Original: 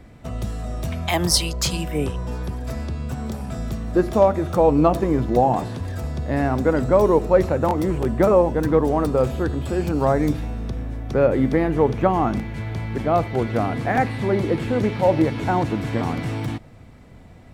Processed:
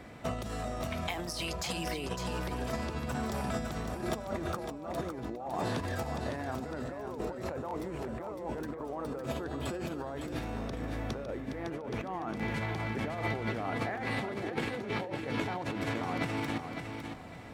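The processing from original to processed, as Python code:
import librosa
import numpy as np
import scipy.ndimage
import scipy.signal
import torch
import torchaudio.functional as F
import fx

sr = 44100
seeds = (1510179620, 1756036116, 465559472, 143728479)

p1 = fx.over_compress(x, sr, threshold_db=-29.0, ratio=-1.0)
p2 = fx.lowpass(p1, sr, hz=1000.0, slope=6)
p3 = fx.tilt_eq(p2, sr, slope=4.0)
y = p3 + fx.echo_feedback(p3, sr, ms=557, feedback_pct=26, wet_db=-7, dry=0)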